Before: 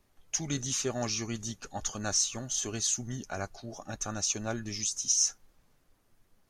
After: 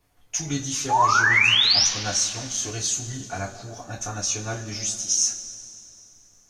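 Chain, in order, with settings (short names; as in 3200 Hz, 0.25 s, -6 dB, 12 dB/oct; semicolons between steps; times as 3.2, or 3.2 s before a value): painted sound rise, 0.89–1.87, 790–6200 Hz -23 dBFS; two-slope reverb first 0.21 s, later 2.8 s, from -21 dB, DRR -5 dB; gain -1 dB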